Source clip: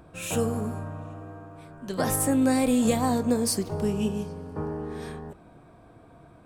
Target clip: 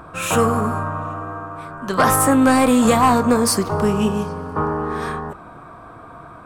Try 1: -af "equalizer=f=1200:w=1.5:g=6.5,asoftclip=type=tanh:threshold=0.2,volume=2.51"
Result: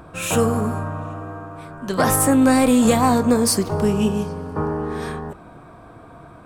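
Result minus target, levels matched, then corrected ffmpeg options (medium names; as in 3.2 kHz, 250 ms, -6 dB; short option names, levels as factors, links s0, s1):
1 kHz band -4.0 dB
-af "equalizer=f=1200:w=1.5:g=15.5,asoftclip=type=tanh:threshold=0.2,volume=2.51"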